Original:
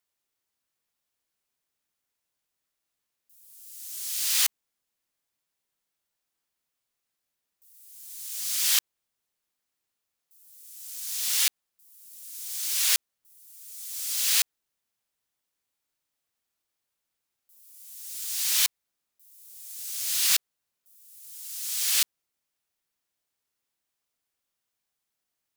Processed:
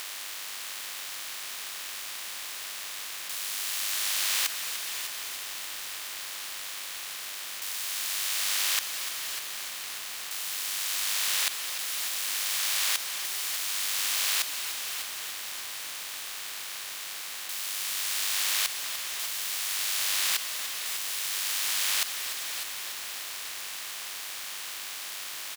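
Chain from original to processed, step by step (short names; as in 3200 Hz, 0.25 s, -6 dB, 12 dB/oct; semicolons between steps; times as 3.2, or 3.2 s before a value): per-bin compression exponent 0.2; HPF 100 Hz; high shelf 2300 Hz -11.5 dB; in parallel at -11.5 dB: soft clip -28.5 dBFS, distortion -10 dB; on the sum: AM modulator 99 Hz, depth 20%; on a send: echo 0.601 s -12 dB; on the sum: lo-fi delay 0.296 s, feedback 80%, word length 7-bit, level -10 dB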